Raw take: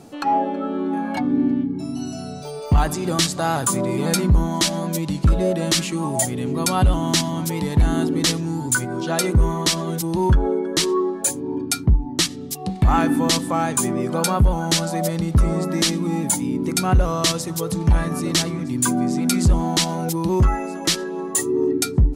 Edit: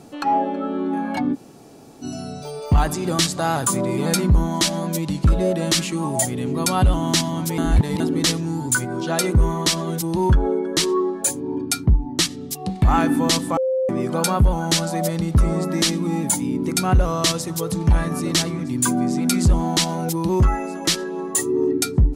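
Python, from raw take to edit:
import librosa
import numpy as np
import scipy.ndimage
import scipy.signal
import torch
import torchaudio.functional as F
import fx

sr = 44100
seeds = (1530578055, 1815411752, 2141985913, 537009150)

y = fx.edit(x, sr, fx.room_tone_fill(start_s=1.34, length_s=0.69, crossfade_s=0.04),
    fx.reverse_span(start_s=7.58, length_s=0.42),
    fx.bleep(start_s=13.57, length_s=0.32, hz=522.0, db=-17.5), tone=tone)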